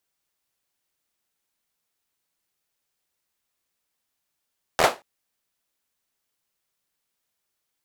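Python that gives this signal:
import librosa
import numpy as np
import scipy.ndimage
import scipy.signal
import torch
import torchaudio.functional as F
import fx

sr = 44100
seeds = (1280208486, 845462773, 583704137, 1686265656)

y = fx.drum_clap(sr, seeds[0], length_s=0.23, bursts=5, spacing_ms=12, hz=690.0, decay_s=0.23)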